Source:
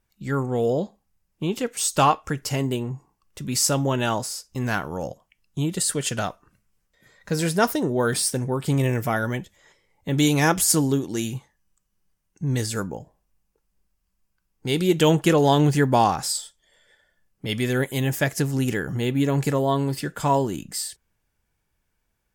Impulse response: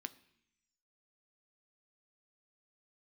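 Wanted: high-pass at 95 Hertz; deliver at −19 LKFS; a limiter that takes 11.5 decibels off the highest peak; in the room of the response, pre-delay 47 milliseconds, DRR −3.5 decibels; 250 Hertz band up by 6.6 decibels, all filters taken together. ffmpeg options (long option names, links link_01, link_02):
-filter_complex "[0:a]highpass=95,equalizer=frequency=250:width_type=o:gain=8.5,alimiter=limit=-13.5dB:level=0:latency=1,asplit=2[link_01][link_02];[1:a]atrim=start_sample=2205,adelay=47[link_03];[link_02][link_03]afir=irnorm=-1:irlink=0,volume=6.5dB[link_04];[link_01][link_04]amix=inputs=2:normalize=0,volume=1dB"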